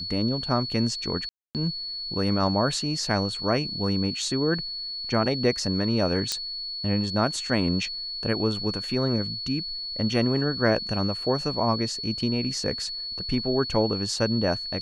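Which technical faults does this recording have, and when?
whistle 4,400 Hz −31 dBFS
0:01.29–0:01.55: drop-out 258 ms
0:06.32: click −11 dBFS

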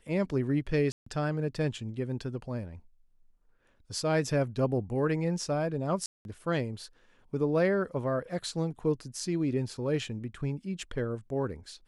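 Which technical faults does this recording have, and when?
0:00.92–0:01.06: drop-out 144 ms
0:06.06–0:06.25: drop-out 191 ms

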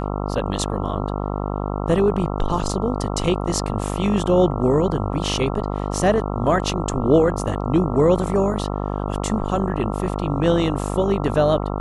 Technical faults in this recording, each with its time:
mains buzz 50 Hz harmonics 27 −25 dBFS

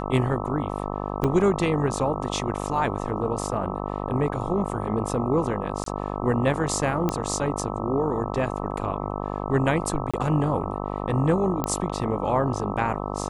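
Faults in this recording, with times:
mains buzz 50 Hz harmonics 26 −30 dBFS
0:01.24–0:01.25: drop-out 5 ms
0:05.84–0:05.86: drop-out 23 ms
0:07.09: click −11 dBFS
0:10.11–0:10.14: drop-out 26 ms
0:11.64: click −11 dBFS

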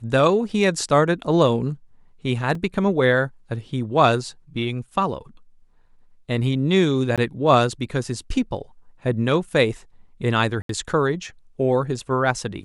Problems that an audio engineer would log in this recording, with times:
0:02.55: drop-out 3.1 ms
0:07.16–0:07.18: drop-out 17 ms
0:10.62–0:10.69: drop-out 73 ms

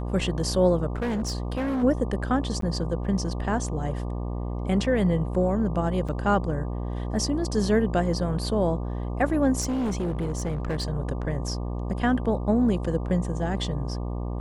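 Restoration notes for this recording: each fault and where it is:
mains buzz 60 Hz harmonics 20 −30 dBFS
0:00.96–0:01.84: clipping −24 dBFS
0:02.61–0:02.62: drop-out 13 ms
0:06.08–0:06.09: drop-out 6.3 ms
0:09.60–0:10.90: clipping −23.5 dBFS

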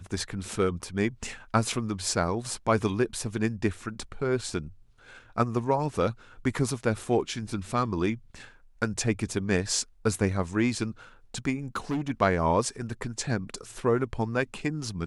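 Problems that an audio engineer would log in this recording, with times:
0:11.75–0:12.11: clipping −25 dBFS

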